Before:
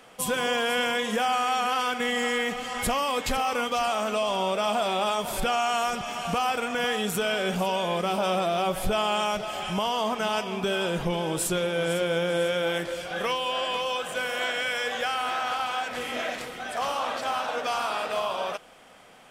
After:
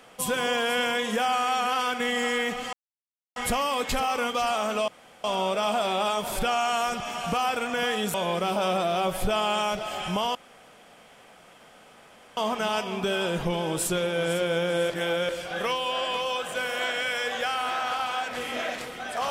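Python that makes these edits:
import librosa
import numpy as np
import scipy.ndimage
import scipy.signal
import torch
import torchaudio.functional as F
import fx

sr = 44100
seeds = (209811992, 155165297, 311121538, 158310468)

y = fx.edit(x, sr, fx.insert_silence(at_s=2.73, length_s=0.63),
    fx.insert_room_tone(at_s=4.25, length_s=0.36),
    fx.cut(start_s=7.15, length_s=0.61),
    fx.insert_room_tone(at_s=9.97, length_s=2.02),
    fx.reverse_span(start_s=12.5, length_s=0.39), tone=tone)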